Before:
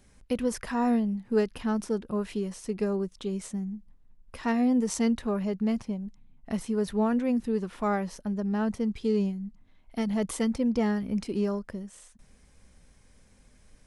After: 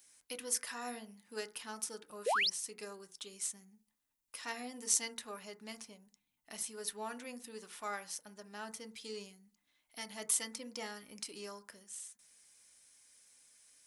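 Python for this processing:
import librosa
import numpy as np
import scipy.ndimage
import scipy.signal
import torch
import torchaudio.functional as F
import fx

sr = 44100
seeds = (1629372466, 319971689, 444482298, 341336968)

y = np.diff(x, prepend=0.0)
y = fx.rev_fdn(y, sr, rt60_s=0.35, lf_ratio=1.2, hf_ratio=0.3, size_ms=20.0, drr_db=7.5)
y = fx.spec_paint(y, sr, seeds[0], shape='rise', start_s=2.26, length_s=0.24, low_hz=410.0, high_hz=6100.0, level_db=-36.0)
y = y * 10.0 ** (5.0 / 20.0)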